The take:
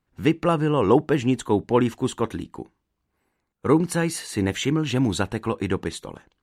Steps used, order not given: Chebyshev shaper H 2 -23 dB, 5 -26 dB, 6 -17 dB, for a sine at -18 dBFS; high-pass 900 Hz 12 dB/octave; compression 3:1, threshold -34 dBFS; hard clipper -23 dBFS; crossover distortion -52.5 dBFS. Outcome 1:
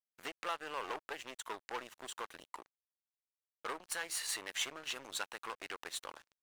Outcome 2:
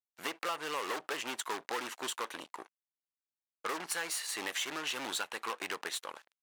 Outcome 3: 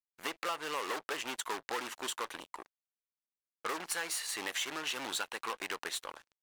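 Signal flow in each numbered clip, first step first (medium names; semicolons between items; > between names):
compression > Chebyshev shaper > hard clipper > high-pass > crossover distortion; crossover distortion > Chebyshev shaper > high-pass > compression > hard clipper; Chebyshev shaper > high-pass > crossover distortion > compression > hard clipper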